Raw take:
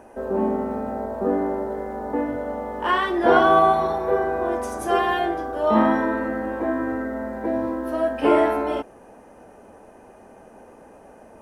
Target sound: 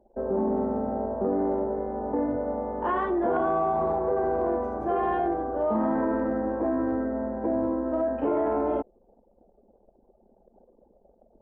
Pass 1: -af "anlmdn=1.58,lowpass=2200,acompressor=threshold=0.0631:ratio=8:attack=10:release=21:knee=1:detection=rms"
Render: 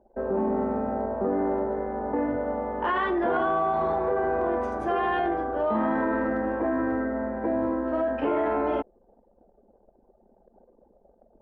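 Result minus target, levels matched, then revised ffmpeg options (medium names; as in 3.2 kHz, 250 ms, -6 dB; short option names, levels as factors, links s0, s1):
2 kHz band +7.0 dB
-af "anlmdn=1.58,lowpass=940,acompressor=threshold=0.0631:ratio=8:attack=10:release=21:knee=1:detection=rms"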